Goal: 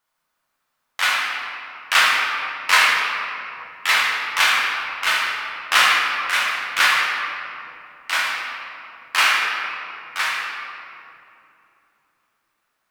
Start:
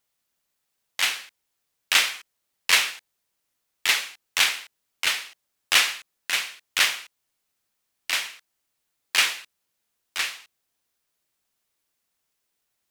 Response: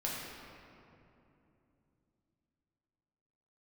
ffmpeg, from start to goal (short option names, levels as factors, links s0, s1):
-filter_complex "[0:a]equalizer=f=1200:w=0.99:g=13[s0];[1:a]atrim=start_sample=2205[s1];[s0][s1]afir=irnorm=-1:irlink=0,volume=0.794"